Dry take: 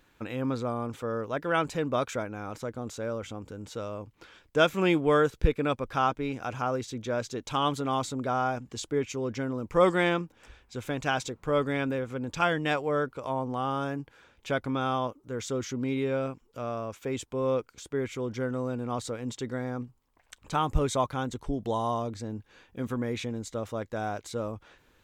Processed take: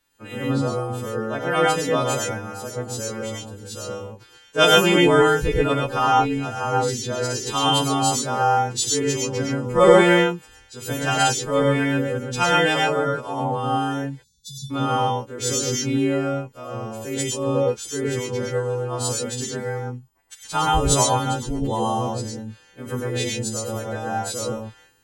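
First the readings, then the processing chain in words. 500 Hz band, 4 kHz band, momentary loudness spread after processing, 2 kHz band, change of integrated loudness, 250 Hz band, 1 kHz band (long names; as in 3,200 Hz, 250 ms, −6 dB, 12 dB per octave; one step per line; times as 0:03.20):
+7.5 dB, +14.0 dB, 15 LU, +8.5 dB, +9.0 dB, +7.0 dB, +9.0 dB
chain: every partial snapped to a pitch grid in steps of 2 semitones
time-frequency box erased 0:14.10–0:14.70, 230–3,200 Hz
reverb whose tail is shaped and stops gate 150 ms rising, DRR −2 dB
multiband upward and downward expander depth 40%
level +3.5 dB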